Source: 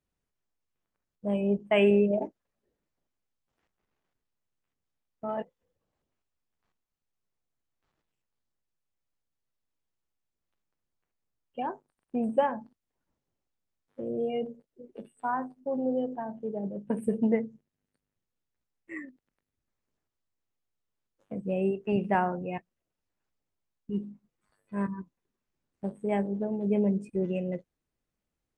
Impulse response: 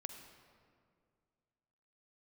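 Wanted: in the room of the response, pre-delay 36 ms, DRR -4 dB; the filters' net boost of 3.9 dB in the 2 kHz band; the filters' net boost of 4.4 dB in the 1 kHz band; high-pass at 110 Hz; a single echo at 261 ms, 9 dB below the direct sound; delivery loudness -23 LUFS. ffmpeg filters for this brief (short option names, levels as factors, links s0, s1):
-filter_complex "[0:a]highpass=110,equalizer=f=1000:t=o:g=5,equalizer=f=2000:t=o:g=3.5,aecho=1:1:261:0.355,asplit=2[s0][s1];[1:a]atrim=start_sample=2205,adelay=36[s2];[s1][s2]afir=irnorm=-1:irlink=0,volume=2.24[s3];[s0][s3]amix=inputs=2:normalize=0,volume=1.12"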